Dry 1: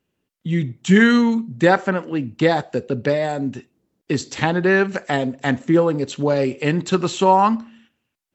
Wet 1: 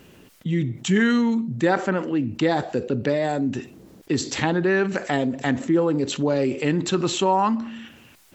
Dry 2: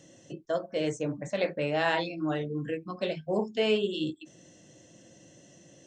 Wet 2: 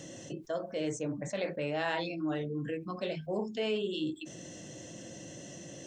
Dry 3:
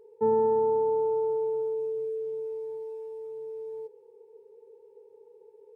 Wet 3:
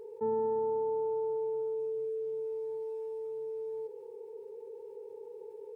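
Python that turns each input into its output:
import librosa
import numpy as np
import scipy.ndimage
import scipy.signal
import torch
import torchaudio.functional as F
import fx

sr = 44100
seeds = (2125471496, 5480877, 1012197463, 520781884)

y = fx.dynamic_eq(x, sr, hz=310.0, q=2.7, threshold_db=-33.0, ratio=4.0, max_db=5)
y = fx.env_flatten(y, sr, amount_pct=50)
y = y * librosa.db_to_amplitude(-8.5)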